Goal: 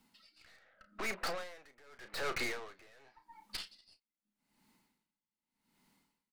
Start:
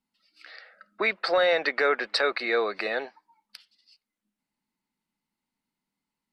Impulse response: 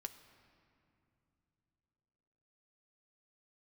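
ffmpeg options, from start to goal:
-filter_complex "[0:a]asettb=1/sr,asplit=3[link_01][link_02][link_03];[link_01]atrim=end=0.574[link_04];[link_02]atrim=start=0.57:end=2.92,asetpts=PTS-STARTPTS,afade=type=in:duration=0.004:curve=qsin,afade=type=out:start_time=2.346:duration=0.004:curve=qsin,lowpass=frequency=1800:poles=1[link_05];[link_03]atrim=start=2.916[link_06];[link_04][link_05]acrossfade=duration=0.004:curve1=hsin:curve2=qsin[link_07];[link_07][link_06]acrossfade=duration=0.004:curve1=qsin:curve2=hsin,acompressor=threshold=-32dB:ratio=6,alimiter=level_in=5dB:limit=-24dB:level=0:latency=1:release=10,volume=-5dB,acrossover=split=480|1000[link_08][link_09][link_10];[link_08]acompressor=threshold=-52dB:ratio=4[link_11];[link_09]acompressor=threshold=-52dB:ratio=4[link_12];[link_10]acompressor=threshold=-41dB:ratio=4[link_13];[link_11][link_12][link_13]amix=inputs=3:normalize=0,aeval=exprs='(tanh(316*val(0)+0.65)-tanh(0.65))/316':channel_layout=same,asplit=2[link_14][link_15];[link_15]adelay=33,volume=-11dB[link_16];[link_14][link_16]amix=inputs=2:normalize=0,aeval=exprs='val(0)*pow(10,-28*(0.5-0.5*cos(2*PI*0.85*n/s))/20)':channel_layout=same,volume=17.5dB"

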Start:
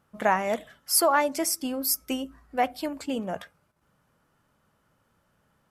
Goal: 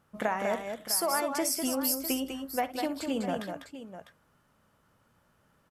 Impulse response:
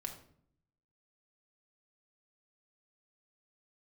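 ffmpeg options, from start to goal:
-af "acompressor=threshold=-26dB:ratio=6,aecho=1:1:61|199|652:0.188|0.501|0.237"

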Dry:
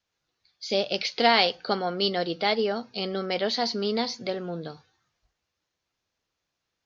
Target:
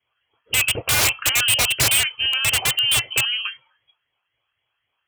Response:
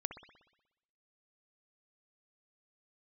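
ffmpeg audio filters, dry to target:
-af "afftfilt=real='re*pow(10,10/40*sin(2*PI*(0.69*log(max(b,1)*sr/1024/100)/log(2)-(-2.9)*(pts-256)/sr)))':imag='im*pow(10,10/40*sin(2*PI*(0.69*log(max(b,1)*sr/1024/100)/log(2)-(-2.9)*(pts-256)/sr)))':win_size=1024:overlap=0.75,adynamicequalizer=threshold=0.0126:dfrequency=1800:dqfactor=2.3:tfrequency=1800:tqfactor=2.3:attack=5:release=100:ratio=0.375:range=2.5:mode=boostabove:tftype=bell,lowpass=frequency=2100:width_type=q:width=0.5098,lowpass=frequency=2100:width_type=q:width=0.6013,lowpass=frequency=2100:width_type=q:width=0.9,lowpass=frequency=2100:width_type=q:width=2.563,afreqshift=-2500,aeval=exprs='(mod(10*val(0)+1,2)-1)/10':channel_layout=same,asetrate=59535,aresample=44100,aeval=exprs='0.0944*(abs(mod(val(0)/0.0944+3,4)-2)-1)':channel_layout=same,highpass=55,lowshelf=frequency=150:width_type=q:width=3:gain=7,volume=8.5dB"

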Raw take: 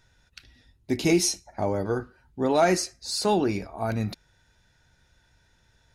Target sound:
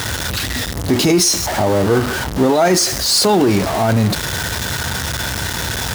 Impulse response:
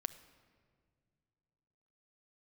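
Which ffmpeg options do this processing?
-af "aeval=exprs='val(0)+0.5*0.0531*sgn(val(0))':channel_layout=same,highpass=frequency=61:width=0.5412,highpass=frequency=61:width=1.3066,equalizer=frequency=2400:width=4.6:gain=-4,alimiter=level_in=15.5dB:limit=-1dB:release=50:level=0:latency=1,volume=-4.5dB"

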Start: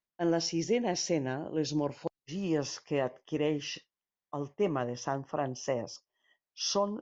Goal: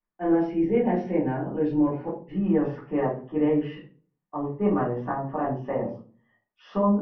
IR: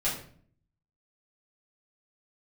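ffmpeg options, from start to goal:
-filter_complex "[0:a]lowpass=frequency=1900:width=0.5412,lowpass=frequency=1900:width=1.3066[link_01];[1:a]atrim=start_sample=2205,asetrate=66150,aresample=44100[link_02];[link_01][link_02]afir=irnorm=-1:irlink=0,volume=1.5dB"

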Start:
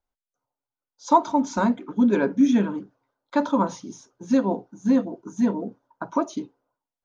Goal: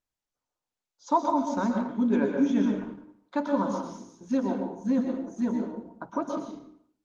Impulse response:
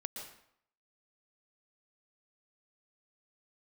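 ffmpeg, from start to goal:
-filter_complex "[1:a]atrim=start_sample=2205[link_01];[0:a][link_01]afir=irnorm=-1:irlink=0,volume=-3.5dB" -ar 48000 -c:a libopus -b:a 20k

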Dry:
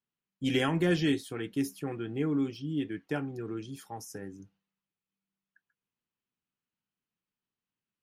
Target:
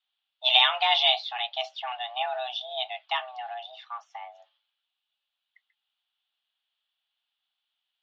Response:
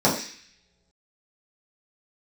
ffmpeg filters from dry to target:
-filter_complex "[0:a]aexciter=amount=7.9:drive=2.4:freq=2500,asettb=1/sr,asplit=3[link_01][link_02][link_03];[link_01]atrim=end=3.544[link_04];[link_02]atrim=start=3.54:end=4.35,asetpts=PTS-STARTPTS,afade=type=in:duration=0.004:curve=qsin,afade=type=out:start_time=0.806:duration=0.004:curve=qsin,highshelf=frequency=2800:gain=-11.5[link_05];[link_03]atrim=start=4.346[link_06];[link_04][link_05]acrossfade=duration=0.004:curve1=hsin:curve2=qsin[link_07];[link_07][link_06]acrossfade=duration=0.004:curve1=qsin:curve2=hsin,highpass=frequency=390:width_type=q:width=0.5412,highpass=frequency=390:width_type=q:width=1.307,lowpass=frequency=3200:width_type=q:width=0.5176,lowpass=frequency=3200:width_type=q:width=0.7071,lowpass=frequency=3200:width_type=q:width=1.932,afreqshift=370,volume=6dB"

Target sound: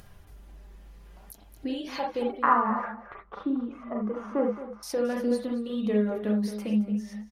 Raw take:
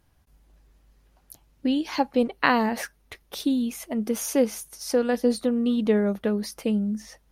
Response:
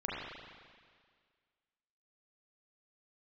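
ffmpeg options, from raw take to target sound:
-filter_complex "[0:a]asettb=1/sr,asplit=3[link_01][link_02][link_03];[link_01]atrim=end=2.384[link_04];[link_02]atrim=start=2.38:end=4.83,asetpts=PTS-STARTPTS,afade=type=in:duration=0.004:curve=qsin,afade=type=out:start_time=2.446:duration=0.004:curve=qsin,lowpass=frequency=1200:width_type=q:width=5.3[link_05];[link_03]atrim=start=4.826[link_06];[link_04][link_05]acrossfade=duration=0.004:curve1=hsin:curve2=qsin[link_07];[link_07][link_06]acrossfade=duration=0.004:curve1=qsin:curve2=hsin[link_08];[1:a]atrim=start_sample=2205,afade=type=out:start_time=0.13:duration=0.01,atrim=end_sample=6174[link_09];[link_08][link_09]afir=irnorm=-1:irlink=0,acompressor=threshold=-25dB:ratio=1.5,asplit=2[link_10][link_11];[link_11]adelay=221.6,volume=-12dB,highshelf=frequency=4000:gain=-4.99[link_12];[link_10][link_12]amix=inputs=2:normalize=0,acompressor=mode=upward:threshold=-34dB:ratio=2.5,flanger=delay=1.6:depth=4.3:regen=-45:speed=0.51:shape=sinusoidal"

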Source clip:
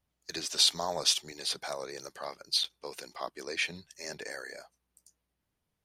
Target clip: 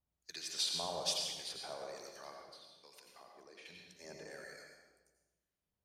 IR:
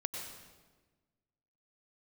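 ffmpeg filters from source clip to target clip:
-filter_complex "[0:a]acrossover=split=1300[link_01][link_02];[link_01]aeval=exprs='val(0)*(1-0.7/2+0.7/2*cos(2*PI*1.2*n/s))':channel_layout=same[link_03];[link_02]aeval=exprs='val(0)*(1-0.7/2-0.7/2*cos(2*PI*1.2*n/s))':channel_layout=same[link_04];[link_03][link_04]amix=inputs=2:normalize=0,asplit=3[link_05][link_06][link_07];[link_05]afade=type=out:start_time=2.4:duration=0.02[link_08];[link_06]acompressor=threshold=-48dB:ratio=12,afade=type=in:start_time=2.4:duration=0.02,afade=type=out:start_time=3.65:duration=0.02[link_09];[link_07]afade=type=in:start_time=3.65:duration=0.02[link_10];[link_08][link_09][link_10]amix=inputs=3:normalize=0[link_11];[1:a]atrim=start_sample=2205,asetrate=48510,aresample=44100[link_12];[link_11][link_12]afir=irnorm=-1:irlink=0,volume=-6dB"

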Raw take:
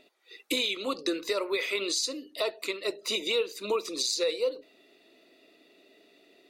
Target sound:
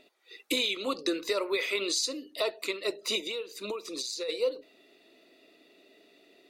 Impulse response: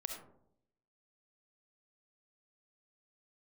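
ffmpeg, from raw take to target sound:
-filter_complex "[0:a]asplit=3[link_01][link_02][link_03];[link_01]afade=type=out:start_time=3.2:duration=0.02[link_04];[link_02]acompressor=threshold=-33dB:ratio=6,afade=type=in:start_time=3.2:duration=0.02,afade=type=out:start_time=4.28:duration=0.02[link_05];[link_03]afade=type=in:start_time=4.28:duration=0.02[link_06];[link_04][link_05][link_06]amix=inputs=3:normalize=0"

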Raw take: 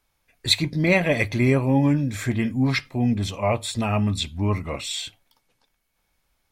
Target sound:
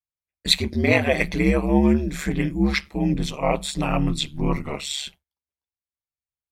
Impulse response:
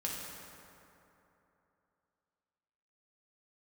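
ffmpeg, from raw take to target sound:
-af "bandreject=frequency=60:width_type=h:width=6,bandreject=frequency=120:width_type=h:width=6,aeval=exprs='val(0)*sin(2*PI*71*n/s)':channel_layout=same,agate=range=-33dB:threshold=-40dB:ratio=3:detection=peak,volume=3.5dB"

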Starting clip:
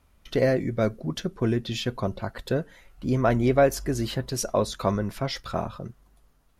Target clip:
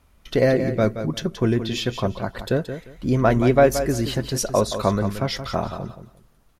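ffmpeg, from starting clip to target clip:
ffmpeg -i in.wav -af "aecho=1:1:175|350|525:0.316|0.0664|0.0139,volume=4dB" out.wav

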